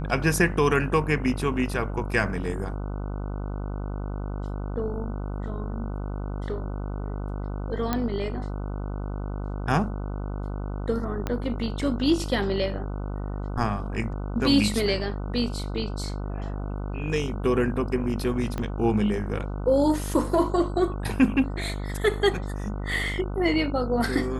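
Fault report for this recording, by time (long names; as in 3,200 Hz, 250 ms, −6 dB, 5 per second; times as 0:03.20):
mains buzz 50 Hz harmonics 30 −31 dBFS
0:07.93: click −11 dBFS
0:11.27: click −14 dBFS
0:18.58: click −17 dBFS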